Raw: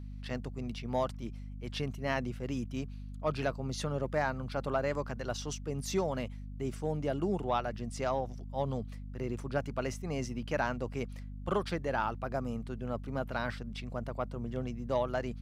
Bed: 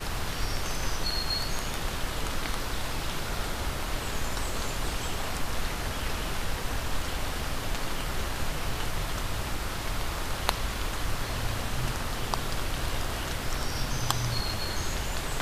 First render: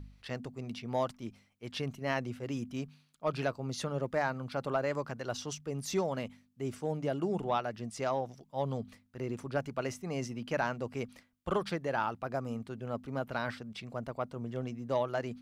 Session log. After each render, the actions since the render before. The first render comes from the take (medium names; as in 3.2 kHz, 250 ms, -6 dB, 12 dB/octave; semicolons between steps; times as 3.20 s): de-hum 50 Hz, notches 5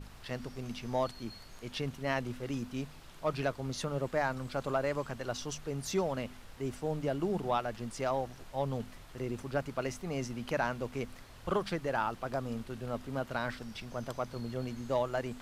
add bed -21.5 dB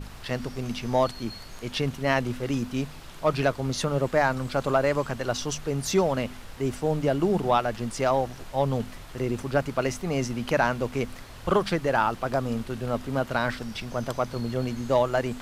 trim +9 dB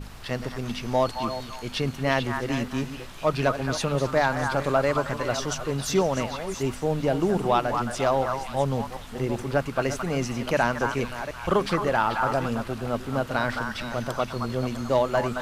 chunks repeated in reverse 390 ms, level -11 dB; repeats whose band climbs or falls 219 ms, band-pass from 1.2 kHz, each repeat 1.4 oct, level -2 dB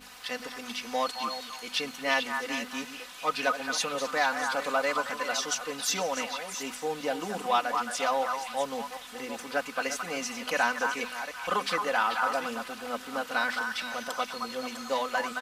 high-pass 1.3 kHz 6 dB/octave; comb 4 ms, depth 83%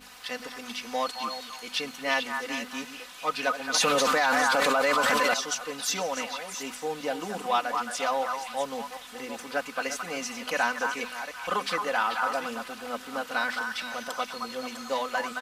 3.74–5.34 s: level flattener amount 100%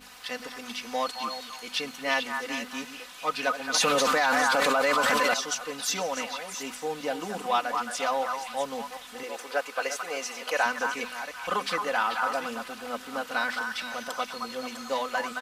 9.23–10.66 s: resonant low shelf 300 Hz -11 dB, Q 1.5